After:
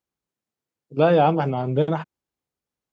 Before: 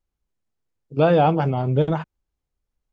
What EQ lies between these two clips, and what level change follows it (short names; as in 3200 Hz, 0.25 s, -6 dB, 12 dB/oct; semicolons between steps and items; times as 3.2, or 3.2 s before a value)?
HPF 150 Hz 12 dB/oct; 0.0 dB